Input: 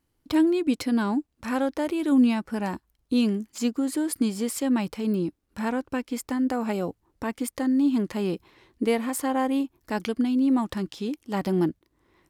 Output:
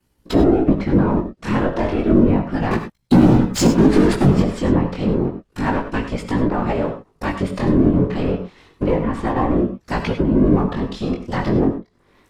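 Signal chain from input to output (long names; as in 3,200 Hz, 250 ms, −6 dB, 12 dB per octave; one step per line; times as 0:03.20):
gain on one half-wave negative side −12 dB
0:08.96–0:09.50: low-pass filter 1,900 Hz 6 dB per octave
treble cut that deepens with the level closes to 1,200 Hz, closed at −22.5 dBFS
0:02.71–0:04.42: leveller curve on the samples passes 3
in parallel at −9 dB: gain into a clipping stage and back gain 25.5 dB
on the sum: random phases in short frames
chorus effect 0.31 Hz, delay 16.5 ms, depth 6.8 ms
convolution reverb, pre-delay 3 ms, DRR 7.5 dB
boost into a limiter +13 dB
level −2 dB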